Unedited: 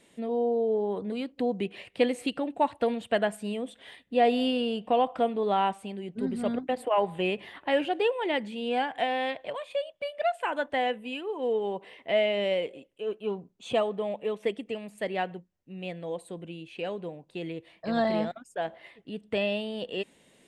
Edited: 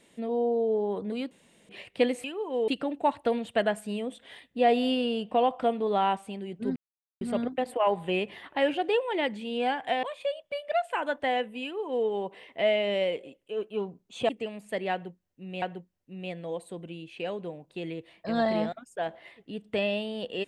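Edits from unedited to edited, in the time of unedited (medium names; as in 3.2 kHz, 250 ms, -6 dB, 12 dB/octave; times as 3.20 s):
1.31–1.69 s: room tone
6.32 s: insert silence 0.45 s
9.14–9.53 s: delete
11.13–11.57 s: copy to 2.24 s
13.79–14.58 s: delete
15.21–15.91 s: loop, 2 plays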